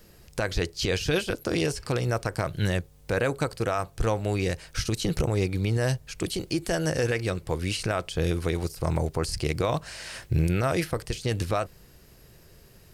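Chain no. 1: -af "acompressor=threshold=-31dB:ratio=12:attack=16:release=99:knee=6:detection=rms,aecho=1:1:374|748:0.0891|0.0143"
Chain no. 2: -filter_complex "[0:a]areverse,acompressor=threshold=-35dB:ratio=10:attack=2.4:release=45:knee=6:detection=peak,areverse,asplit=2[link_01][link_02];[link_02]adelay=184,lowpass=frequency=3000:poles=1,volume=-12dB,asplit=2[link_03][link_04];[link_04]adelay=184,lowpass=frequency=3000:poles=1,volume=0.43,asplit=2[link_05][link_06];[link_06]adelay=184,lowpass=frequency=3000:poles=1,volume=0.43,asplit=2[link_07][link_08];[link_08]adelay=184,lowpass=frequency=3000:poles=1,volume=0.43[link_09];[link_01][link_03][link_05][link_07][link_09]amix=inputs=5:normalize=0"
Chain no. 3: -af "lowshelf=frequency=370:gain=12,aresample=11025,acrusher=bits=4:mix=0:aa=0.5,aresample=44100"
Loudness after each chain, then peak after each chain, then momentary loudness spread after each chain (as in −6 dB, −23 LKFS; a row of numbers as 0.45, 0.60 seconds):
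−36.0, −39.0, −20.0 LKFS; −16.0, −23.0, −3.5 dBFS; 5, 5, 7 LU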